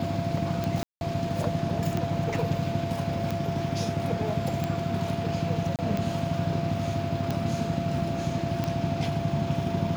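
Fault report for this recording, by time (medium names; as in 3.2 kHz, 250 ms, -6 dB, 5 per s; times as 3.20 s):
tick 45 rpm -15 dBFS
whine 680 Hz -32 dBFS
0.83–1.01 s: dropout 181 ms
5.76–5.79 s: dropout 28 ms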